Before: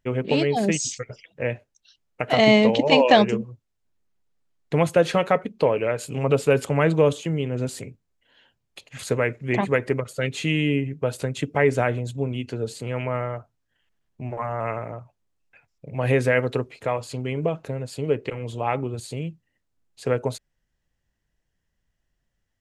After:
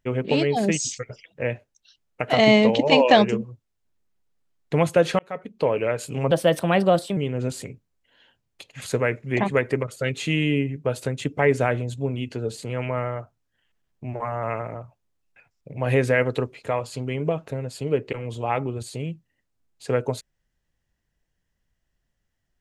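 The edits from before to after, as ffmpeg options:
ffmpeg -i in.wav -filter_complex "[0:a]asplit=4[link_01][link_02][link_03][link_04];[link_01]atrim=end=5.19,asetpts=PTS-STARTPTS,afade=type=out:start_time=5.186:duration=0.004:curve=hsin[link_05];[link_02]atrim=start=5.19:end=6.314,asetpts=PTS-STARTPTS,afade=type=in:duration=0.59[link_06];[link_03]atrim=start=6.31:end=7.34,asetpts=PTS-STARTPTS,asetrate=52920,aresample=44100,atrim=end_sample=37852,asetpts=PTS-STARTPTS[link_07];[link_04]atrim=start=7.336[link_08];[link_05][link_06]concat=n=2:v=0:a=1[link_09];[link_09][link_07]acrossfade=duration=0.004:curve1=hsin:curve2=hsin[link_10];[link_10][link_08]acrossfade=duration=0.004:curve1=hsin:curve2=hsin" out.wav

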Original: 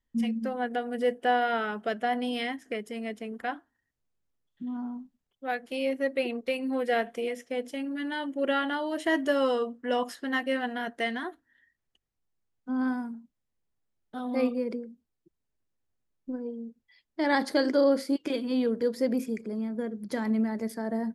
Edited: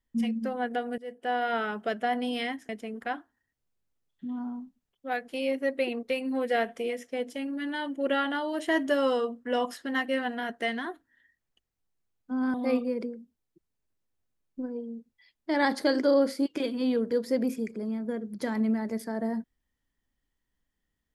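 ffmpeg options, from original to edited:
ffmpeg -i in.wav -filter_complex "[0:a]asplit=4[link_01][link_02][link_03][link_04];[link_01]atrim=end=0.98,asetpts=PTS-STARTPTS,afade=type=out:start_time=0.976:duration=0.004:curve=hsin:silence=0.0668344[link_05];[link_02]atrim=start=0.98:end=2.692,asetpts=PTS-STARTPTS,afade=type=in:duration=0.6:silence=0.0668344[link_06];[link_03]atrim=start=3.068:end=12.922[link_07];[link_04]atrim=start=14.238[link_08];[link_05][link_06]concat=n=2:v=0:a=1[link_09];[link_09][link_07]acrossfade=duration=0.004:curve1=hsin:curve2=hsin[link_10];[link_10][link_08]acrossfade=duration=0.004:curve1=hsin:curve2=hsin" out.wav

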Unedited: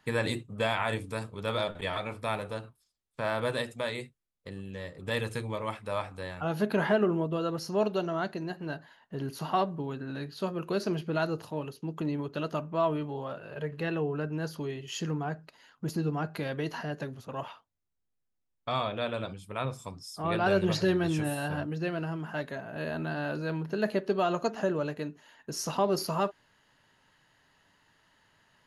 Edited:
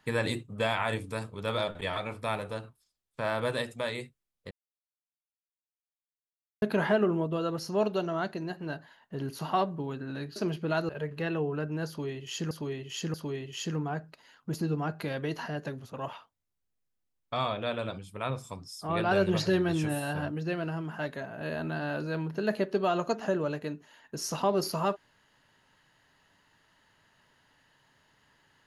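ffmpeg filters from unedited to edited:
ffmpeg -i in.wav -filter_complex "[0:a]asplit=7[link_01][link_02][link_03][link_04][link_05][link_06][link_07];[link_01]atrim=end=4.51,asetpts=PTS-STARTPTS,afade=type=out:start_time=4.506:duration=0.004:curve=hsin[link_08];[link_02]atrim=start=4.51:end=6.62,asetpts=PTS-STARTPTS,volume=0[link_09];[link_03]atrim=start=6.62:end=10.362,asetpts=PTS-STARTPTS,afade=type=in:duration=0.004:curve=hsin[link_10];[link_04]atrim=start=10.808:end=11.342[link_11];[link_05]atrim=start=13.498:end=15.122[link_12];[link_06]atrim=start=14.488:end=15.122[link_13];[link_07]atrim=start=14.488[link_14];[link_08][link_09][link_10]concat=n=3:v=0:a=1[link_15];[link_15][link_11]acrossfade=duration=0.004:curve1=hsin:curve2=hsin[link_16];[link_16][link_12]acrossfade=duration=0.004:curve1=hsin:curve2=hsin[link_17];[link_17][link_13]acrossfade=duration=0.004:curve1=hsin:curve2=hsin[link_18];[link_18][link_14]acrossfade=duration=0.004:curve1=hsin:curve2=hsin" out.wav

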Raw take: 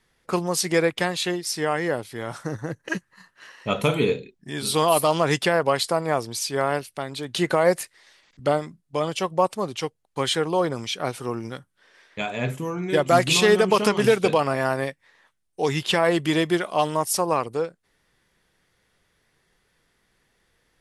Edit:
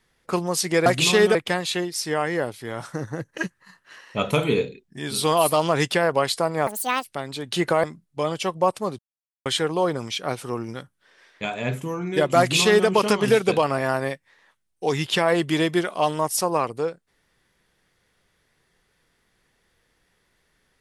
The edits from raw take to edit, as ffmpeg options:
ffmpeg -i in.wav -filter_complex "[0:a]asplit=8[link_01][link_02][link_03][link_04][link_05][link_06][link_07][link_08];[link_01]atrim=end=0.862[link_09];[link_02]atrim=start=13.148:end=13.642[link_10];[link_03]atrim=start=0.858:end=6.184[link_11];[link_04]atrim=start=6.18:end=6.87,asetpts=PTS-STARTPTS,asetrate=80703,aresample=44100[link_12];[link_05]atrim=start=6.866:end=7.662[link_13];[link_06]atrim=start=8.598:end=9.75,asetpts=PTS-STARTPTS,afade=type=out:start_time=1.148:duration=0.004:curve=hsin[link_14];[link_07]atrim=start=9.75:end=10.22,asetpts=PTS-STARTPTS,volume=0[link_15];[link_08]atrim=start=10.22,asetpts=PTS-STARTPTS,afade=type=in:duration=0.004:curve=hsin[link_16];[link_09][link_10]acrossfade=duration=0.004:curve1=hsin:curve2=hsin[link_17];[link_17][link_11]acrossfade=duration=0.004:curve1=hsin:curve2=hsin[link_18];[link_18][link_12]acrossfade=duration=0.004:curve1=hsin:curve2=hsin[link_19];[link_19][link_13]acrossfade=duration=0.004:curve1=hsin:curve2=hsin[link_20];[link_14][link_15][link_16]concat=n=3:v=0:a=1[link_21];[link_20][link_21]acrossfade=duration=0.004:curve1=hsin:curve2=hsin" out.wav

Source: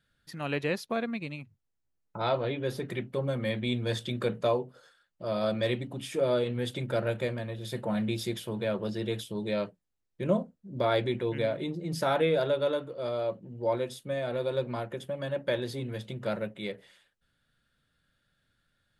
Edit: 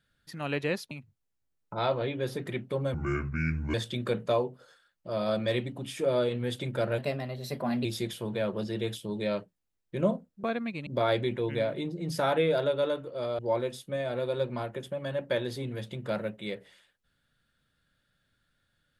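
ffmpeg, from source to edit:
ffmpeg -i in.wav -filter_complex "[0:a]asplit=9[link_01][link_02][link_03][link_04][link_05][link_06][link_07][link_08][link_09];[link_01]atrim=end=0.912[link_10];[link_02]atrim=start=1.338:end=3.374[link_11];[link_03]atrim=start=3.37:end=3.89,asetpts=PTS-STARTPTS,asetrate=28665,aresample=44100[link_12];[link_04]atrim=start=3.886:end=7.134[link_13];[link_05]atrim=start=7.13:end=8.11,asetpts=PTS-STARTPTS,asetrate=49833,aresample=44100,atrim=end_sample=38246,asetpts=PTS-STARTPTS[link_14];[link_06]atrim=start=8.106:end=10.702[link_15];[link_07]atrim=start=0.908:end=1.342[link_16];[link_08]atrim=start=10.698:end=13.222[link_17];[link_09]atrim=start=13.558[link_18];[link_10][link_11]acrossfade=duration=0.004:curve1=hsin:curve2=hsin[link_19];[link_19][link_12]acrossfade=duration=0.004:curve1=hsin:curve2=hsin[link_20];[link_20][link_13]acrossfade=duration=0.004:curve1=hsin:curve2=hsin[link_21];[link_21][link_14]acrossfade=duration=0.004:curve1=hsin:curve2=hsin[link_22];[link_22][link_15]acrossfade=duration=0.004:curve1=hsin:curve2=hsin[link_23];[link_23][link_16]acrossfade=duration=0.004:curve1=hsin:curve2=hsin[link_24];[link_24][link_17]acrossfade=duration=0.004:curve1=hsin:curve2=hsin[link_25];[link_25][link_18]acrossfade=duration=0.004:curve1=hsin:curve2=hsin" out.wav

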